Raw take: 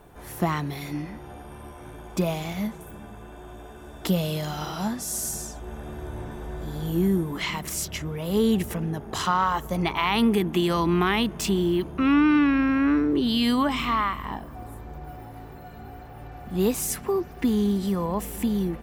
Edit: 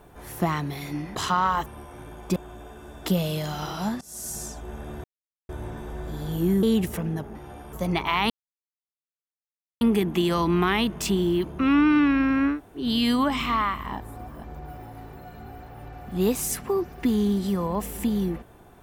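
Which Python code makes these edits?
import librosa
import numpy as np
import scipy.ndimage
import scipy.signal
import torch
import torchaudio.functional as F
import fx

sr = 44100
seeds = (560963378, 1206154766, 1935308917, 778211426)

y = fx.edit(x, sr, fx.swap(start_s=1.15, length_s=0.38, other_s=9.12, other_length_s=0.51),
    fx.cut(start_s=2.23, length_s=1.12),
    fx.fade_in_from(start_s=5.0, length_s=0.45, floor_db=-23.0),
    fx.insert_silence(at_s=6.03, length_s=0.45),
    fx.cut(start_s=7.17, length_s=1.23),
    fx.insert_silence(at_s=10.2, length_s=1.51),
    fx.room_tone_fill(start_s=12.92, length_s=0.29, crossfade_s=0.16),
    fx.reverse_span(start_s=14.39, length_s=0.44), tone=tone)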